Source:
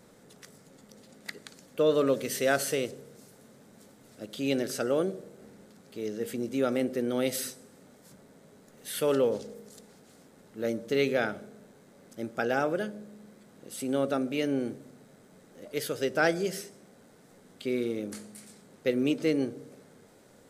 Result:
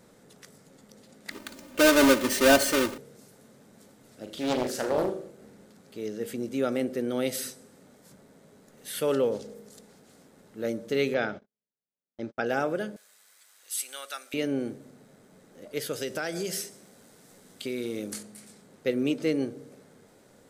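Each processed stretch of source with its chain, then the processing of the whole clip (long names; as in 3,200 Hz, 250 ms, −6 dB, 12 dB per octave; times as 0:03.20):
0:01.31–0:02.98: each half-wave held at its own peak + comb filter 3.3 ms, depth 85%
0:04.22–0:05.31: flutter between parallel walls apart 6.8 metres, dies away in 0.4 s + highs frequency-modulated by the lows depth 0.55 ms
0:11.14–0:12.46: inverse Chebyshev low-pass filter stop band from 12,000 Hz, stop band 50 dB + noise gate −43 dBFS, range −48 dB
0:12.96–0:14.34: high-pass filter 1,300 Hz + spectral tilt +3 dB per octave
0:15.93–0:18.23: high-shelf EQ 3,100 Hz +9 dB + downward compressor, threshold −27 dBFS
whole clip: no processing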